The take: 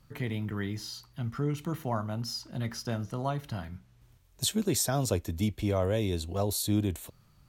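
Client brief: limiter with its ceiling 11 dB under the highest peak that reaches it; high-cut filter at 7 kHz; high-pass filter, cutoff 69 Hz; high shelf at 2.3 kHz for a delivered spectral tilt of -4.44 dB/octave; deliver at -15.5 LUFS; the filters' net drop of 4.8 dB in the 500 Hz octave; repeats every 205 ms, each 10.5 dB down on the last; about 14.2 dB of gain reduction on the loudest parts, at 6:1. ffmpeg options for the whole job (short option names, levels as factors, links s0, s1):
-af "highpass=69,lowpass=7000,equalizer=f=500:t=o:g=-6.5,highshelf=f=2300:g=5.5,acompressor=threshold=0.0112:ratio=6,alimiter=level_in=3.16:limit=0.0631:level=0:latency=1,volume=0.316,aecho=1:1:205|410|615:0.299|0.0896|0.0269,volume=26.6"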